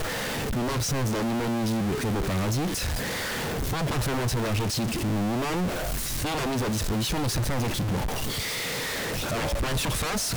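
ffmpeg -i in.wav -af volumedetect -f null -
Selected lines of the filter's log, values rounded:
mean_volume: -27.1 dB
max_volume: -20.9 dB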